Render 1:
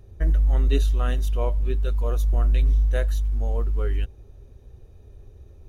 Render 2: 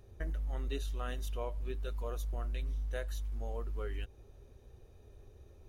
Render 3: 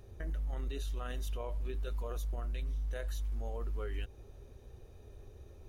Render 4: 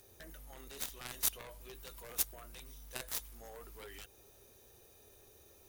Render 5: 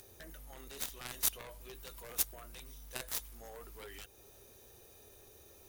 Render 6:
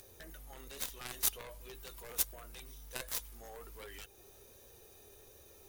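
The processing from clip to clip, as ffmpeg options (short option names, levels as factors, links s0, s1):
-af "lowshelf=f=250:g=-8.5,acompressor=threshold=0.02:ratio=2.5,volume=0.75"
-af "alimiter=level_in=3.35:limit=0.0631:level=0:latency=1:release=29,volume=0.299,volume=1.5"
-af "aemphasis=mode=production:type=riaa,aeval=exprs='0.0708*(cos(1*acos(clip(val(0)/0.0708,-1,1)))-cos(1*PI/2))+0.02*(cos(3*acos(clip(val(0)/0.0708,-1,1)))-cos(3*PI/2))+0.00355*(cos(7*acos(clip(val(0)/0.0708,-1,1)))-cos(7*PI/2))':c=same,volume=4.22"
-af "acompressor=mode=upward:threshold=0.002:ratio=2.5,volume=1.12"
-af "flanger=delay=1.7:depth=1.1:regen=73:speed=1.3:shape=triangular,volume=1.68"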